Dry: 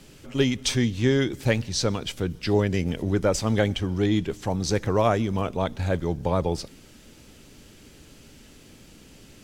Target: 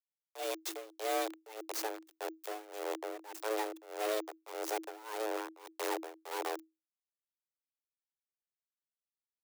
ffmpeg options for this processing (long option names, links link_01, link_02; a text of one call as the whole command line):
ffmpeg -i in.wav -af "aeval=exprs='val(0)*gte(abs(val(0)),0.0708)':channel_layout=same,highshelf=frequency=8500:gain=6.5,aeval=exprs='(tanh(28.2*val(0)+0.4)-tanh(0.4))/28.2':channel_layout=same,tremolo=f=1.7:d=0.91,afreqshift=320,adynamicequalizer=threshold=0.002:dfrequency=2500:dqfactor=0.7:tfrequency=2500:tqfactor=0.7:attack=5:release=100:ratio=0.375:range=3.5:mode=cutabove:tftype=highshelf" out.wav